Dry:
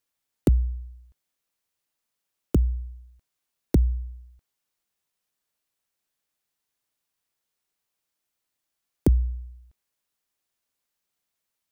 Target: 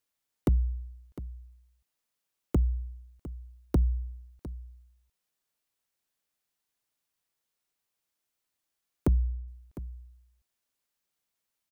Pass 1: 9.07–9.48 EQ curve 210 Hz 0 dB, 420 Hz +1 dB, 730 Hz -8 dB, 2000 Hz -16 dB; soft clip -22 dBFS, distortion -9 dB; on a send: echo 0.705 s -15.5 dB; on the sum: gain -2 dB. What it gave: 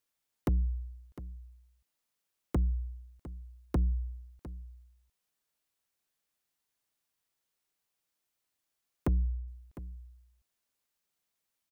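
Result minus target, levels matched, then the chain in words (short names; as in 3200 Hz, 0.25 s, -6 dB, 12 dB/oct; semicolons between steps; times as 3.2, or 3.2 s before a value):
soft clip: distortion +7 dB
9.07–9.48 EQ curve 210 Hz 0 dB, 420 Hz +1 dB, 730 Hz -8 dB, 2000 Hz -16 dB; soft clip -15.5 dBFS, distortion -16 dB; on a send: echo 0.705 s -15.5 dB; on the sum: gain -2 dB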